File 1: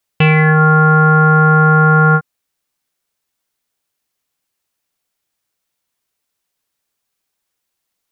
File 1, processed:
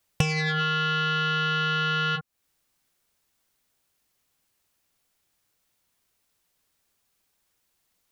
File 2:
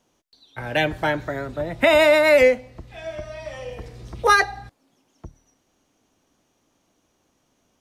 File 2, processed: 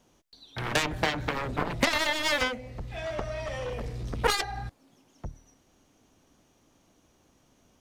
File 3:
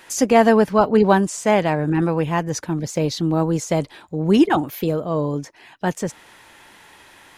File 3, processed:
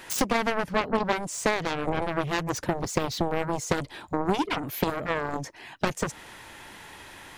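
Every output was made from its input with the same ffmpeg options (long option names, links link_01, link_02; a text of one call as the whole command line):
ffmpeg -i in.wav -af "lowshelf=frequency=170:gain=6.5,acompressor=threshold=-22dB:ratio=8,aeval=exprs='0.266*(cos(1*acos(clip(val(0)/0.266,-1,1)))-cos(1*PI/2))+0.0841*(cos(7*acos(clip(val(0)/0.266,-1,1)))-cos(7*PI/2))':channel_layout=same" out.wav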